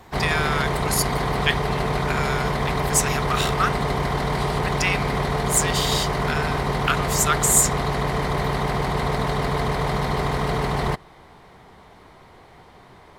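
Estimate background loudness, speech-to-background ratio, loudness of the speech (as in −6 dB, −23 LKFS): −24.0 LKFS, 0.0 dB, −24.0 LKFS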